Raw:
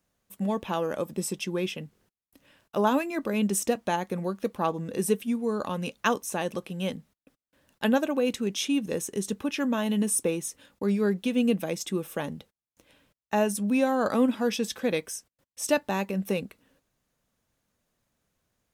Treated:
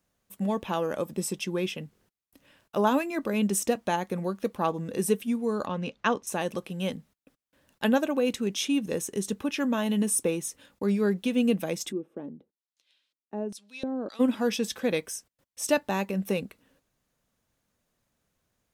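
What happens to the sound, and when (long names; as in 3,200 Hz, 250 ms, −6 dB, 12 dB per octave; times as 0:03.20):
0:05.66–0:06.27: high-frequency loss of the air 130 metres
0:11.91–0:14.19: auto-filter band-pass square 0.47 Hz → 2.3 Hz 310–4,100 Hz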